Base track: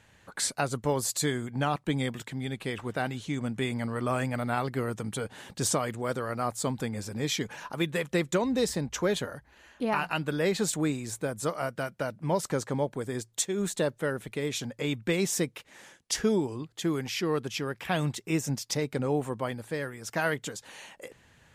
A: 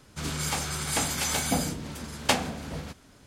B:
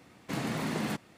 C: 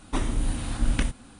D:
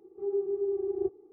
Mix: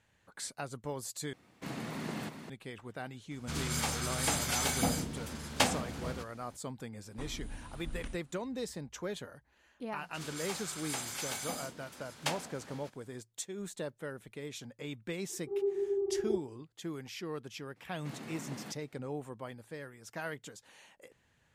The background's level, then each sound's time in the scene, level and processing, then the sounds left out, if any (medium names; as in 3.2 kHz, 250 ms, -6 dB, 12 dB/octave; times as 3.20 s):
base track -11.5 dB
1.33 s: replace with B -7 dB + delay 393 ms -8 dB
3.31 s: add A -4 dB
7.05 s: add C -18 dB
9.97 s: add A -10 dB + high-pass 500 Hz 6 dB/octave
15.29 s: add D -2.5 dB
17.76 s: add B -12.5 dB + high-pass 110 Hz